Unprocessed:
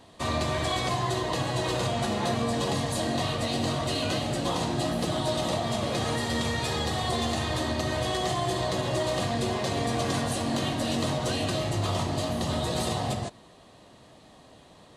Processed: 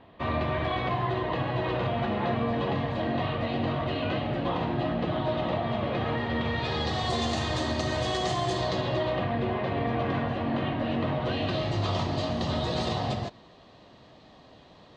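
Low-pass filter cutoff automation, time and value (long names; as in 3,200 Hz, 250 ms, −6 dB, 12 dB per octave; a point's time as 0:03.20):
low-pass filter 24 dB per octave
0:06.40 2,900 Hz
0:07.14 6,900 Hz
0:08.52 6,900 Hz
0:09.24 2,700 Hz
0:11.11 2,700 Hz
0:11.79 5,200 Hz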